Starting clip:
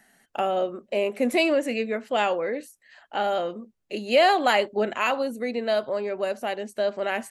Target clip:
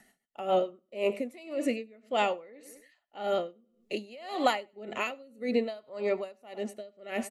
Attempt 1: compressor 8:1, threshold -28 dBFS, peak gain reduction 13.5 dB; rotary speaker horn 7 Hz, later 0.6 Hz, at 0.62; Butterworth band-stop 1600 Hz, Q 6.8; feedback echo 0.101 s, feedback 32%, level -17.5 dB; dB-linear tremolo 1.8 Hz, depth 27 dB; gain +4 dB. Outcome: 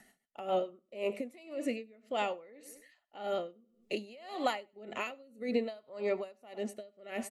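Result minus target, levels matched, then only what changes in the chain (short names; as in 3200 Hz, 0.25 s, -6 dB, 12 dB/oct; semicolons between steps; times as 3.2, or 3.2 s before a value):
compressor: peak gain reduction +6 dB
change: compressor 8:1, threshold -21 dBFS, peak gain reduction 7.5 dB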